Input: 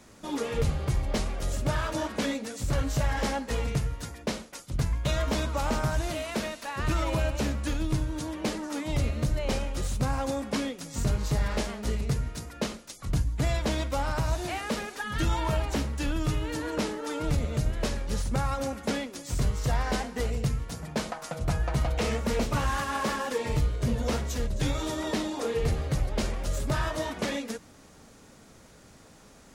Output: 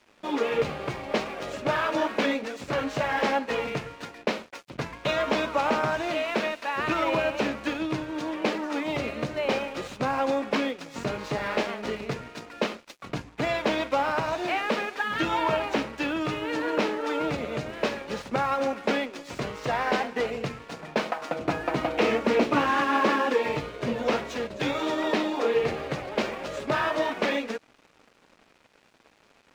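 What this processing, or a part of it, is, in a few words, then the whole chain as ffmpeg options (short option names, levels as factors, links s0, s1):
pocket radio on a weak battery: -filter_complex "[0:a]highpass=300,lowpass=3200,aeval=exprs='sgn(val(0))*max(abs(val(0))-0.00168,0)':c=same,equalizer=f=2500:t=o:w=0.24:g=4,asettb=1/sr,asplit=3[s0][s1][s2];[s0]atrim=end=21.214[s3];[s1]atrim=start=21.21:end=23.34,asetpts=PTS-STARTPTS,afade=t=in:d=0.004:c=qsin,afade=t=out:st=2.126:d=0.004:c=qsin,equalizer=f=300:t=o:w=0.52:g=10[s4];[s2]atrim=start=23.336[s5];[s3][s4]acrossfade=d=0.004:c1=hsin:c2=qsin[s6];[s6][s5]acrossfade=d=0.004:c1=qsin:c2=hsin,volume=2.24"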